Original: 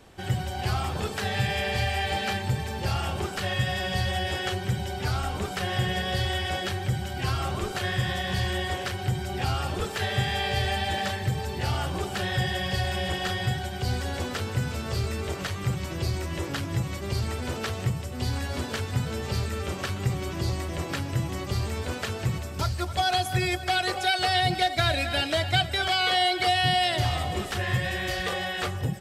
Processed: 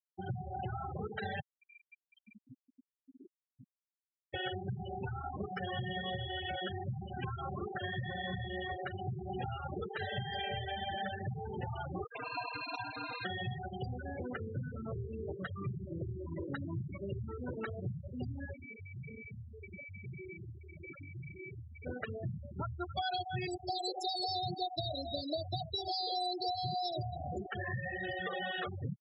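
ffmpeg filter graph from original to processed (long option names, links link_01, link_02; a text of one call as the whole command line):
ffmpeg -i in.wav -filter_complex "[0:a]asettb=1/sr,asplit=3[link_01][link_02][link_03];[link_01]atrim=end=1.404[link_04];[link_02]atrim=start=1.4:end=4.34,asetpts=PTS-STARTPTS,afade=type=in:duration=0.004:curve=qsin,afade=type=out:start_time=2.936:duration=0.004:curve=qsin,asplit=3[link_05][link_06][link_07];[link_05]bandpass=frequency=270:width_type=q:width=8,volume=0dB[link_08];[link_06]bandpass=frequency=2290:width_type=q:width=8,volume=-6dB[link_09];[link_07]bandpass=frequency=3010:width_type=q:width=8,volume=-9dB[link_10];[link_08][link_09][link_10]amix=inputs=3:normalize=0,highshelf=frequency=2300:gain=-8,asplit=2[link_11][link_12];[link_12]adelay=100,lowpass=frequency=3900:poles=1,volume=-9dB,asplit=2[link_13][link_14];[link_14]adelay=100,lowpass=frequency=3900:poles=1,volume=0.27,asplit=2[link_15][link_16];[link_16]adelay=100,lowpass=frequency=3900:poles=1,volume=0.27[link_17];[link_11][link_13][link_15][link_17]amix=inputs=4:normalize=0,atrim=end_sample=129654[link_18];[link_03]atrim=start=4.336[link_19];[link_04][link_18]acrossfade=duration=0.004:curve1=hsin:curve2=qsin[link_20];[link_20][link_19]acrossfade=duration=0.004:curve1=qsin:curve2=hsin,asettb=1/sr,asplit=3[link_21][link_22][link_23];[link_21]atrim=end=12.044[link_24];[link_22]atrim=start=12.04:end=13.25,asetpts=PTS-STARTPTS,afade=type=in:duration=0.004:curve=qsin,afade=type=out:start_time=1.206:duration=0.004:curve=qsin,highpass=frequency=180:poles=1,highshelf=frequency=2800:gain=3,aeval=exprs='val(0)*sin(2*PI*850*n/s)':channel_layout=same[link_25];[link_23]atrim=start=13.246[link_26];[link_24][link_25]acrossfade=duration=0.004:curve1=hsin:curve2=qsin[link_27];[link_27][link_26]acrossfade=duration=0.004:curve1=qsin:curve2=hsin,asettb=1/sr,asplit=3[link_28][link_29][link_30];[link_28]atrim=end=18.534[link_31];[link_29]atrim=start=18.53:end=21.85,asetpts=PTS-STARTPTS,afade=type=in:duration=0.004:curve=qsin,afade=type=out:start_time=3.316:duration=0.004:curve=qsin,asplit=2[link_32][link_33];[link_33]adelay=62,lowpass=frequency=4400:poles=1,volume=-8dB,asplit=2[link_34][link_35];[link_35]adelay=62,lowpass=frequency=4400:poles=1,volume=0.21,asplit=2[link_36][link_37];[link_37]adelay=62,lowpass=frequency=4400:poles=1,volume=0.21[link_38];[link_32][link_34][link_36][link_38]amix=inputs=4:normalize=0,atrim=end_sample=146412,aeval=exprs='val(0)+0.0158*sin(2*PI*2300*n/s)':channel_layout=same,aeval=exprs='(tanh(63.1*val(0)+0.35)-tanh(0.35))/63.1':channel_layout=same[link_39];[link_30]atrim=start=21.846[link_40];[link_31][link_39]acrossfade=duration=0.004:curve1=hsin:curve2=qsin[link_41];[link_41][link_40]acrossfade=duration=0.004:curve1=qsin:curve2=hsin,asettb=1/sr,asplit=3[link_42][link_43][link_44];[link_42]atrim=end=23.474[link_45];[link_43]atrim=start=23.47:end=27.45,asetpts=PTS-STARTPTS,afade=type=in:duration=0.004:curve=qsin,afade=type=out:start_time=3.976:duration=0.004:curve=qsin,asuperstop=centerf=1700:order=12:qfactor=0.56,highshelf=frequency=5300:gain=8[link_46];[link_44]atrim=start=27.446[link_47];[link_45][link_46]acrossfade=duration=0.004:curve1=hsin:curve2=qsin[link_48];[link_48][link_47]acrossfade=duration=0.004:curve1=qsin:curve2=hsin,acompressor=threshold=-29dB:ratio=6,highpass=110,afftfilt=real='re*gte(hypot(re,im),0.0501)':imag='im*gte(hypot(re,im),0.0501)':win_size=1024:overlap=0.75,volume=-3dB" out.wav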